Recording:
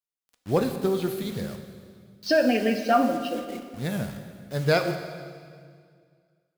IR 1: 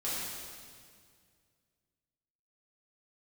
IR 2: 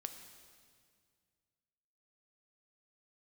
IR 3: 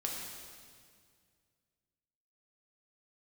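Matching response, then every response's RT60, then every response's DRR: 2; 2.0, 2.0, 2.0 s; -10.0, 6.5, -2.0 dB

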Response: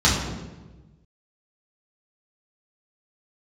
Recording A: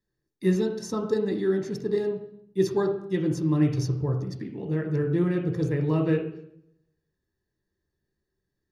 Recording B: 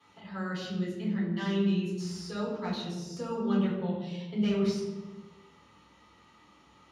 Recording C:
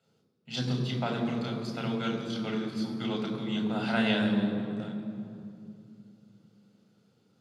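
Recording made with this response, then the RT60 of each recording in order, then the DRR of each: B; 0.70, 1.2, 2.5 s; 2.5, -8.0, 1.5 dB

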